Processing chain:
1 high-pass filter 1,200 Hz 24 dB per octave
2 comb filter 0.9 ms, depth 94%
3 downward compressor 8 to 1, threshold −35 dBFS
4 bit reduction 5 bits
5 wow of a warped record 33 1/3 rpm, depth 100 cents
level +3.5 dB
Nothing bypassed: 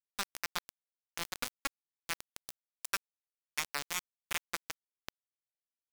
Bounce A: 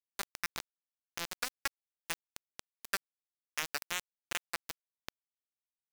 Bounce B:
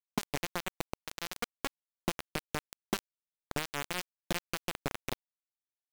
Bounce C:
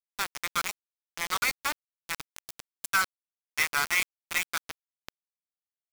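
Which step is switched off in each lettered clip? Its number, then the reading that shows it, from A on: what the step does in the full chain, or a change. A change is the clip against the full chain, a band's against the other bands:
2, 500 Hz band +1.5 dB
1, 125 Hz band +13.5 dB
3, average gain reduction 3.0 dB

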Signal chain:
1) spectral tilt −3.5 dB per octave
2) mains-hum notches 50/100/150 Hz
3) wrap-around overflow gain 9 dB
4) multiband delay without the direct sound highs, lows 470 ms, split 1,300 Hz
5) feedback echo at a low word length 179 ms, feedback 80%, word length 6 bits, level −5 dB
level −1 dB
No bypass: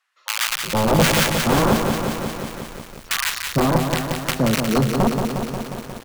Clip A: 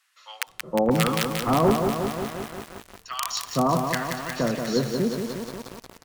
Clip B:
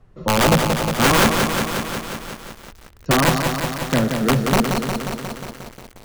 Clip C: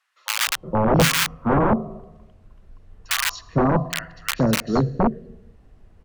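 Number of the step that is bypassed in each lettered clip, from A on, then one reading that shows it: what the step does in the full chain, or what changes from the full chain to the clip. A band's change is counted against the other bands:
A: 1, 500 Hz band +4.5 dB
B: 4, change in momentary loudness spread +5 LU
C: 5, change in momentary loudness spread −3 LU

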